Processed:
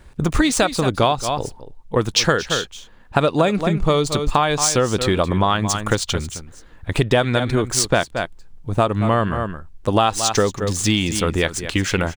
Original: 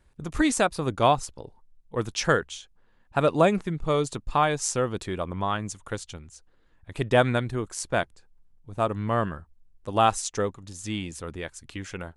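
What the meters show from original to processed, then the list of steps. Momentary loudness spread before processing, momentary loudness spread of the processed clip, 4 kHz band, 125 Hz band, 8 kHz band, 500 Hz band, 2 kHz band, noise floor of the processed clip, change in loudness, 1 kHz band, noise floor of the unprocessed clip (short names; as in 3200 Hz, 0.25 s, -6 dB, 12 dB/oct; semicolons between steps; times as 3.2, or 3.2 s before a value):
16 LU, 9 LU, +12.5 dB, +9.5 dB, +11.0 dB, +6.5 dB, +7.5 dB, -44 dBFS, +7.0 dB, +5.5 dB, -62 dBFS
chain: median filter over 3 samples; in parallel at +1.5 dB: vocal rider within 3 dB; on the sum: echo 0.224 s -13.5 dB; dynamic EQ 4100 Hz, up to +7 dB, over -40 dBFS, Q 1.4; compressor 6:1, threshold -23 dBFS, peak gain reduction 15 dB; gain +9 dB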